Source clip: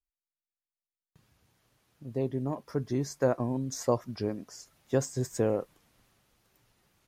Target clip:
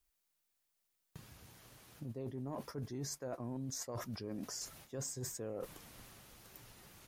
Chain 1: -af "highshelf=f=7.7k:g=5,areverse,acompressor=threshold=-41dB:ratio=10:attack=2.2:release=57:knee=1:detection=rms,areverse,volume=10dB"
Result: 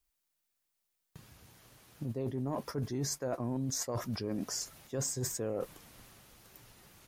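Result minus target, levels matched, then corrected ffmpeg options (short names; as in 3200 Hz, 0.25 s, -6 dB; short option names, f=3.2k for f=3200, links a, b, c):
compressor: peak gain reduction -7 dB
-af "highshelf=f=7.7k:g=5,areverse,acompressor=threshold=-49dB:ratio=10:attack=2.2:release=57:knee=1:detection=rms,areverse,volume=10dB"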